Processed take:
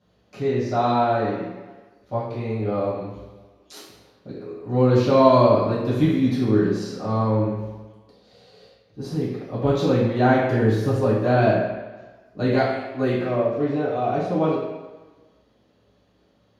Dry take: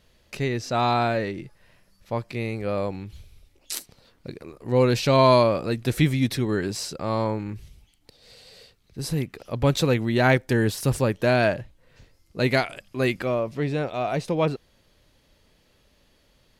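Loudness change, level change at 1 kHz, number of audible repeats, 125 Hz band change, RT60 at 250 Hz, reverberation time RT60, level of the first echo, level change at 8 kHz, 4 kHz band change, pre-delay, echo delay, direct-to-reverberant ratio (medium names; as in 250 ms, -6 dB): +2.5 dB, +2.5 dB, no echo, +1.5 dB, 1.2 s, 1.3 s, no echo, under -10 dB, -5.5 dB, 3 ms, no echo, -11.0 dB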